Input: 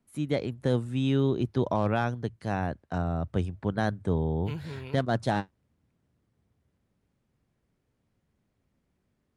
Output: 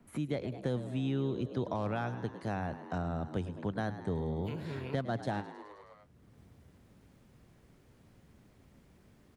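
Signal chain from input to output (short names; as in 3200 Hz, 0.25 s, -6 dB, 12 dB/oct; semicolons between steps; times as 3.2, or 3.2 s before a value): on a send: frequency-shifting echo 0.105 s, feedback 56%, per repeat +70 Hz, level -14 dB; on the sum: three-band squash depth 70%; gain -7.5 dB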